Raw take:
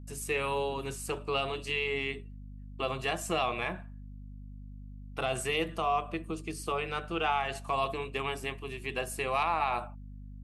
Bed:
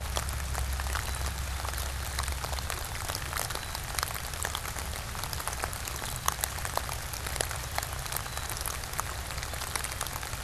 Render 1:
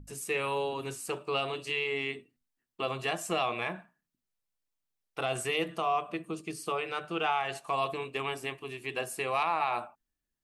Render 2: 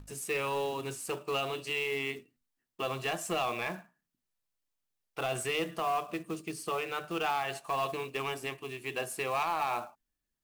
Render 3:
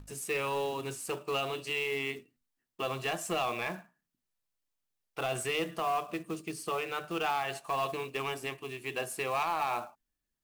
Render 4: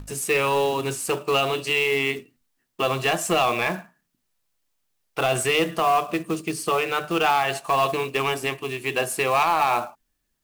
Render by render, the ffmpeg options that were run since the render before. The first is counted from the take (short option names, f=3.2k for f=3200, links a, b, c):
-af "bandreject=f=50:t=h:w=6,bandreject=f=100:t=h:w=6,bandreject=f=150:t=h:w=6,bandreject=f=200:t=h:w=6,bandreject=f=250:t=h:w=6"
-af "acrusher=bits=4:mode=log:mix=0:aa=0.000001,asoftclip=type=tanh:threshold=-23dB"
-af anull
-af "volume=11dB"